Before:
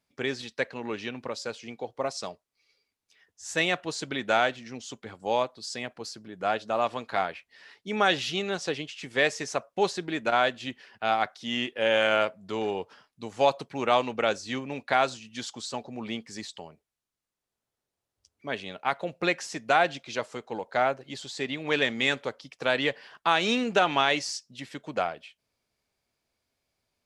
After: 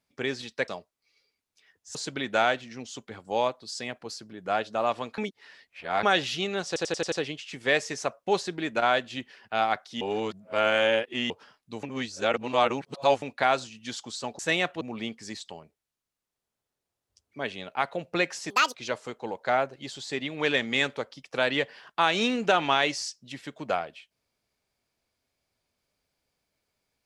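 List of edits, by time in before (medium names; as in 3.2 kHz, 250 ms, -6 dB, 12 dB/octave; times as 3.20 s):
0.68–2.21 s: delete
3.48–3.90 s: move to 15.89 s
7.13–7.98 s: reverse
8.62 s: stutter 0.09 s, 6 plays
11.51–12.80 s: reverse
13.33–14.72 s: reverse
19.58–20.02 s: speed 180%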